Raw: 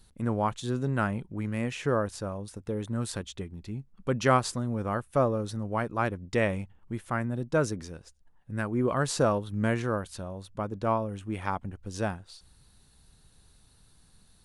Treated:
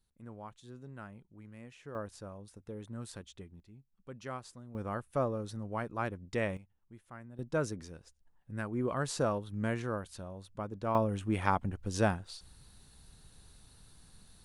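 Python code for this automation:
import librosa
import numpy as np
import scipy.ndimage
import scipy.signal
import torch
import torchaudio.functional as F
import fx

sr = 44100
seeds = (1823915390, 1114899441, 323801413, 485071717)

y = fx.gain(x, sr, db=fx.steps((0.0, -19.5), (1.95, -11.5), (3.6, -19.0), (4.75, -7.0), (6.57, -19.0), (7.39, -6.5), (10.95, 2.0)))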